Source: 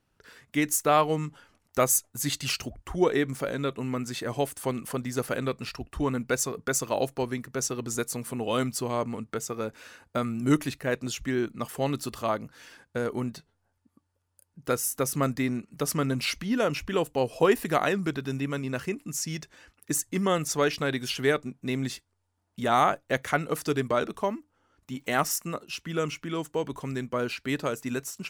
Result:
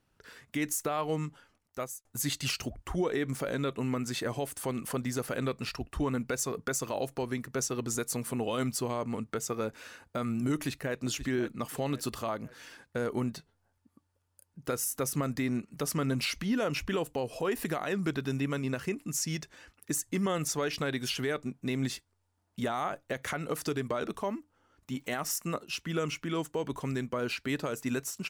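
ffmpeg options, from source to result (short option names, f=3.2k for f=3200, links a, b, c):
-filter_complex "[0:a]asplit=2[a][b];[b]afade=t=in:st=10.55:d=0.01,afade=t=out:st=10.99:d=0.01,aecho=0:1:530|1060|1590|2120:0.188365|0.075346|0.0301384|0.0120554[c];[a][c]amix=inputs=2:normalize=0,asplit=2[d][e];[d]atrim=end=2.05,asetpts=PTS-STARTPTS,afade=t=out:st=0.98:d=1.07[f];[e]atrim=start=2.05,asetpts=PTS-STARTPTS,afade=t=in:d=0.004:c=hsin[g];[f][g]concat=n=2:v=0:a=1,alimiter=limit=-21.5dB:level=0:latency=1:release=112"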